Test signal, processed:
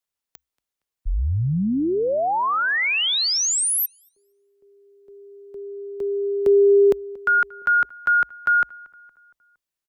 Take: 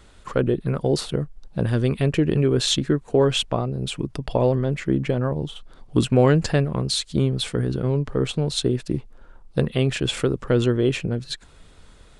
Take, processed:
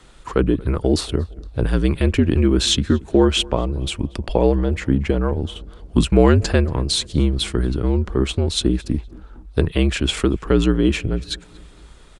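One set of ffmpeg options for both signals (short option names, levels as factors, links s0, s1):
-filter_complex "[0:a]afreqshift=-62,asplit=2[s0][s1];[s1]adelay=232,lowpass=f=2700:p=1,volume=0.0708,asplit=2[s2][s3];[s3]adelay=232,lowpass=f=2700:p=1,volume=0.54,asplit=2[s4][s5];[s5]adelay=232,lowpass=f=2700:p=1,volume=0.54,asplit=2[s6][s7];[s7]adelay=232,lowpass=f=2700:p=1,volume=0.54[s8];[s2][s4][s6][s8]amix=inputs=4:normalize=0[s9];[s0][s9]amix=inputs=2:normalize=0,volume=1.5"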